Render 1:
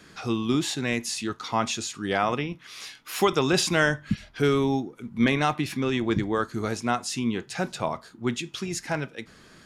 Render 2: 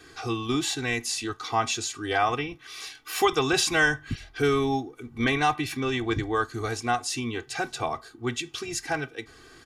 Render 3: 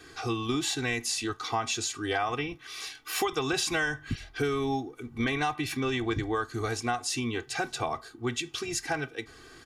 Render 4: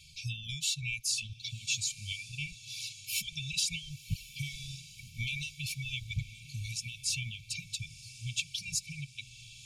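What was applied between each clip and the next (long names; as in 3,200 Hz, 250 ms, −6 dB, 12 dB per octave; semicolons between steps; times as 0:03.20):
comb filter 2.6 ms, depth 96%; dynamic equaliser 360 Hz, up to −6 dB, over −34 dBFS, Q 1.9; level −1.5 dB
downward compressor 6 to 1, threshold −25 dBFS, peak gain reduction 8.5 dB
reverb reduction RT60 1.8 s; linear-phase brick-wall band-stop 200–2,200 Hz; feedback delay with all-pass diffusion 1,089 ms, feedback 51%, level −15 dB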